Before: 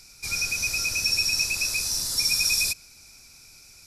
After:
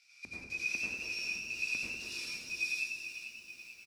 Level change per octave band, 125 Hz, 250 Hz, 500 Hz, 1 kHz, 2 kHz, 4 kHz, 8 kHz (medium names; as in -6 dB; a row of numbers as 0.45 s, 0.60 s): -16.0 dB, -5.5 dB, -7.5 dB, -13.5 dB, -7.0 dB, -18.0 dB, -21.5 dB